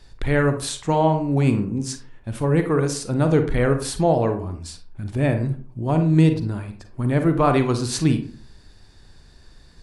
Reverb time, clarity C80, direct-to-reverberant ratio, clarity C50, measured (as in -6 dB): 0.45 s, 14.5 dB, 7.0 dB, 9.0 dB